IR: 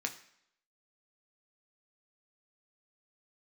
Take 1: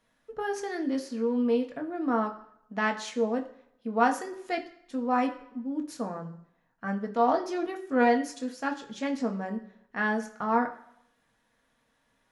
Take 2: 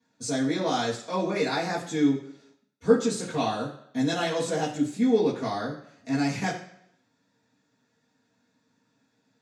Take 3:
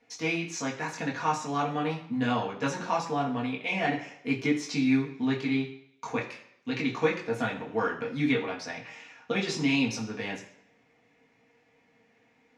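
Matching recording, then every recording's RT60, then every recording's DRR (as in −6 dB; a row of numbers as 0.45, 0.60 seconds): 1; 0.70, 0.70, 0.70 seconds; 3.0, −10.5, −3.5 decibels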